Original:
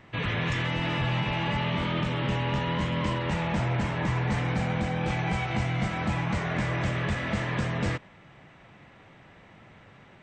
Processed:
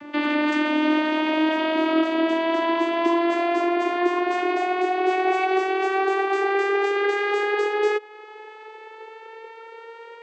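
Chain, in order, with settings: vocoder on a note that slides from D4, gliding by +8 st; in parallel at +2 dB: compression, threshold -38 dBFS, peak gain reduction 15 dB; on the sum: trim +4.5 dB

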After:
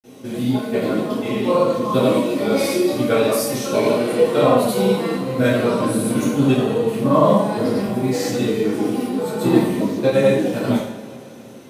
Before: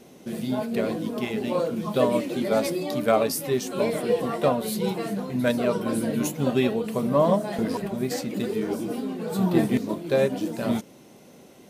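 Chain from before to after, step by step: granulator, pitch spread up and down by 0 st; two-slope reverb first 0.57 s, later 3 s, from -17 dB, DRR -10 dB; trim -2.5 dB

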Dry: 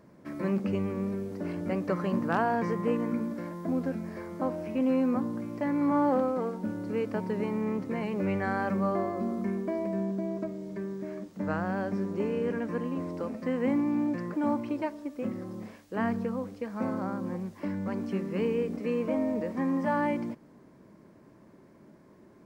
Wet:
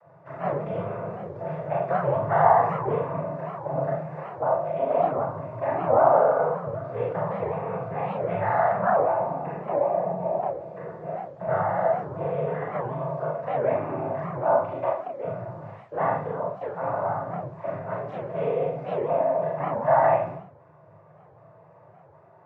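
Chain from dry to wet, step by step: noise-vocoded speech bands 16; FFT filter 160 Hz 0 dB, 220 Hz -29 dB, 670 Hz +5 dB, 1.7 kHz -6 dB, 5.9 kHz -26 dB; Schroeder reverb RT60 0.43 s, combs from 26 ms, DRR -2.5 dB; warped record 78 rpm, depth 250 cents; trim +5 dB

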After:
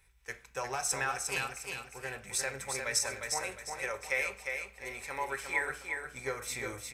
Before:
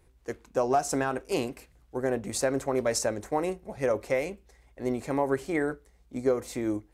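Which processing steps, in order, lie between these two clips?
amplifier tone stack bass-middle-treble 10-0-10; gain riding within 5 dB 2 s; 3.41–5.70 s: peaking EQ 150 Hz -12 dB 0.83 oct; feedback delay 355 ms, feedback 35%, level -5 dB; reverberation RT60 0.50 s, pre-delay 3 ms, DRR 7 dB

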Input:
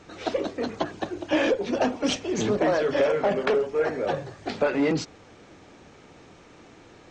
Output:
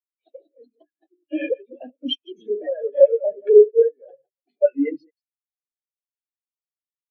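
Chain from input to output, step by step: chunks repeated in reverse 116 ms, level -6 dB; frequency weighting D; spectral contrast expander 4:1; trim +2.5 dB

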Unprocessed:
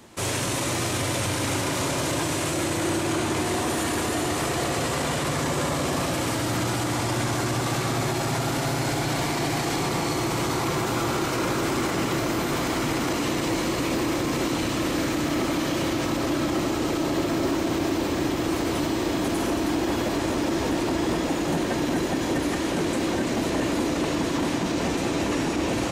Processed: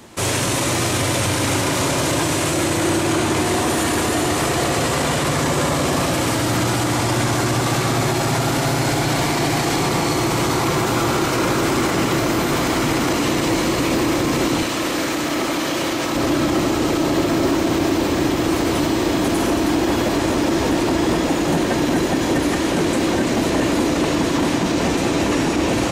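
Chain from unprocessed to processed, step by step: 14.63–16.15 s: bass shelf 220 Hz -11.5 dB; trim +6.5 dB

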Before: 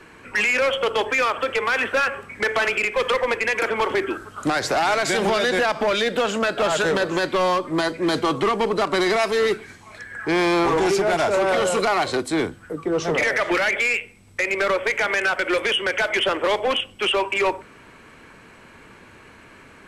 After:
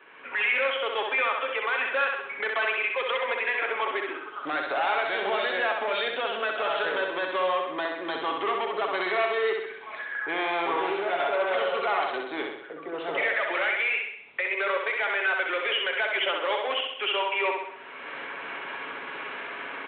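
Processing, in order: recorder AGC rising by 28 dB/s; high-pass 510 Hz 12 dB/octave; comb 7.2 ms, depth 31%; on a send: feedback delay 65 ms, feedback 54%, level -4 dB; on the sum: resampled via 8 kHz; trim -6.5 dB

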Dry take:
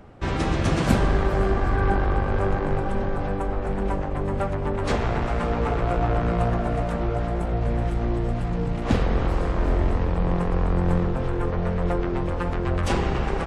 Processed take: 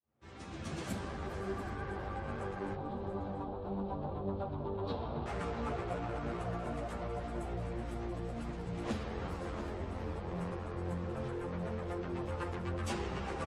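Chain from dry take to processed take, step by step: fade-in on the opening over 3.67 s; 2.75–5.26 s: FFT filter 1 kHz 0 dB, 2 kHz -19 dB, 3.9 kHz -1 dB, 6.7 kHz -29 dB; delay 686 ms -12 dB; compression 6:1, threshold -29 dBFS, peak gain reduction 13.5 dB; high-pass 68 Hz; treble shelf 5 kHz +8 dB; three-phase chorus; trim -1 dB

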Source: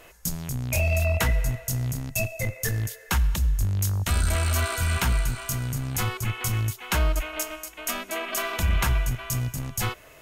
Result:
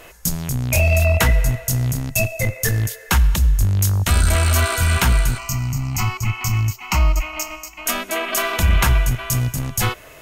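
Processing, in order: 5.38–7.86 s: static phaser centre 2.4 kHz, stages 8; trim +7.5 dB

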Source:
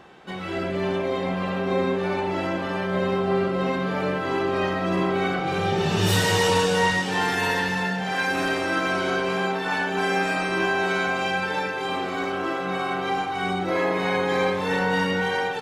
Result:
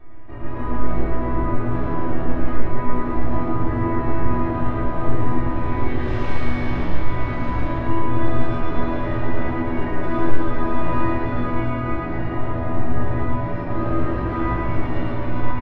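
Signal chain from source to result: spectral peaks clipped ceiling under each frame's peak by 20 dB; RIAA curve playback; comb 2 ms, depth 57%; overload inside the chain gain 19.5 dB; pitch shift -8 st; tape spacing loss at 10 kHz 21 dB; chord resonator E2 major, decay 0.29 s; loudspeakers at several distances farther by 38 m -1 dB, 91 m -10 dB; simulated room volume 790 m³, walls furnished, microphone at 3.6 m; trim +4 dB

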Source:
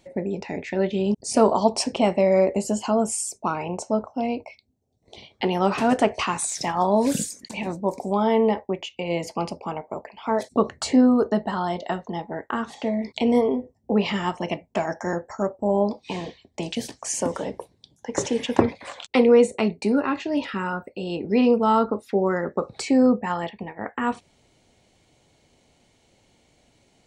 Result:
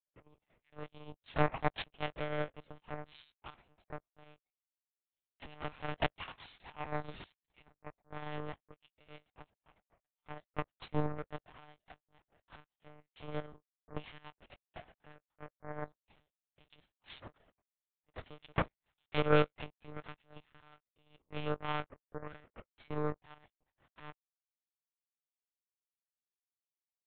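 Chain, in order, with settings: partials quantised in pitch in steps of 2 st; power-law waveshaper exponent 3; monotone LPC vocoder at 8 kHz 150 Hz

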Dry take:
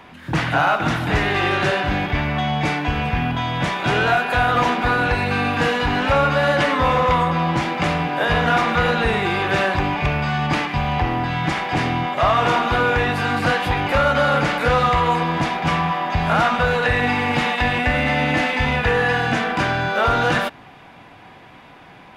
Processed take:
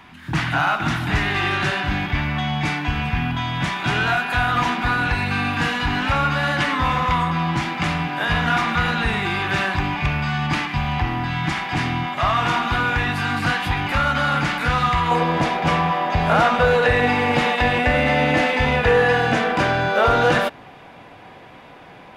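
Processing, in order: peaking EQ 510 Hz -12.5 dB 0.8 oct, from 15.11 s +5 dB

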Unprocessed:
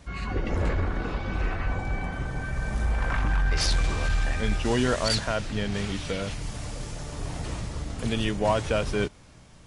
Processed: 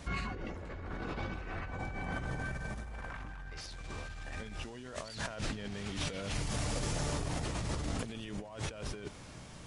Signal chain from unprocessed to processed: bass shelf 65 Hz -7 dB; compressor with a negative ratio -37 dBFS, ratio -1; trim -3 dB

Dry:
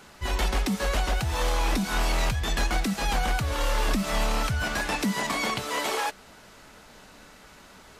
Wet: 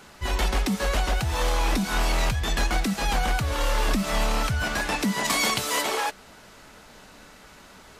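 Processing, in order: 5.24–5.81 s: treble shelf 3.3 kHz -> 4.8 kHz +10.5 dB; trim +1.5 dB

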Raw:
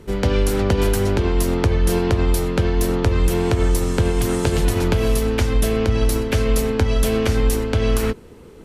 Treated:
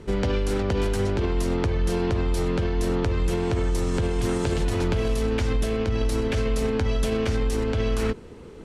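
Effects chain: Bessel low-pass 7.6 kHz, order 4; peak limiter -16 dBFS, peak gain reduction 9 dB

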